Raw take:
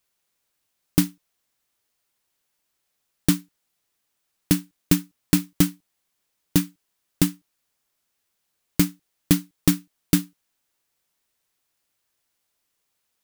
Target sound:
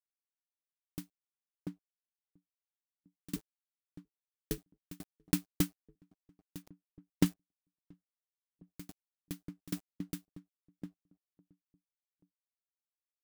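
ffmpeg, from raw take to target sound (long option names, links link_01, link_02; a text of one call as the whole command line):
ffmpeg -i in.wav -filter_complex "[0:a]asettb=1/sr,asplit=3[link_01][link_02][link_03];[link_01]atrim=end=6.624[link_04];[link_02]atrim=start=6.62:end=7.26,asetpts=PTS-STARTPTS,afade=type=in:duration=0.004:curve=qsin,afade=type=out:start_time=0.636:duration=0.004:curve=qsin,highshelf=frequency=8000:gain=-12[link_05];[link_03]atrim=start=7.256[link_06];[link_04][link_05]acrossfade=duration=0.004:curve1=hsin:curve2=qsin[link_07];[link_07][link_06]acrossfade=duration=0.004:curve1=qsin:curve2=hsin,aeval=exprs='val(0)*gte(abs(val(0)),0.0106)':channel_layout=same,asettb=1/sr,asplit=3[link_08][link_09][link_10];[link_08]atrim=end=3.364[link_11];[link_09]atrim=start=3.36:end=4.58,asetpts=PTS-STARTPTS,afade=type=in:duration=0.004:curve=qsin,afade=type=out:start_time=1.216:duration=0.004:curve=qsin,aeval=exprs='val(0)*sin(2*PI*140*n/s)':channel_layout=same[link_12];[link_10]atrim=start=4.576[link_13];[link_11][link_12]acrossfade=duration=0.004:curve1=hsin:curve2=qsin[link_14];[link_14][link_13]acrossfade=duration=0.004:curve1=qsin:curve2=hsin,asplit=2[link_15][link_16];[link_16]adelay=688,lowpass=frequency=800:poles=1,volume=-16dB,asplit=2[link_17][link_18];[link_18]adelay=688,lowpass=frequency=800:poles=1,volume=0.27,asplit=2[link_19][link_20];[link_20]adelay=688,lowpass=frequency=800:poles=1,volume=0.27[link_21];[link_15][link_17][link_19][link_21]amix=inputs=4:normalize=0,aeval=exprs='val(0)*pow(10,-38*if(lt(mod(3.6*n/s,1),2*abs(3.6)/1000),1-mod(3.6*n/s,1)/(2*abs(3.6)/1000),(mod(3.6*n/s,1)-2*abs(3.6)/1000)/(1-2*abs(3.6)/1000))/20)':channel_layout=same,volume=-3.5dB" out.wav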